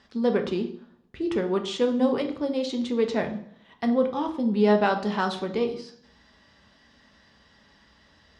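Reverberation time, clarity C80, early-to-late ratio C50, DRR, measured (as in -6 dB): 0.60 s, 14.0 dB, 11.0 dB, 4.5 dB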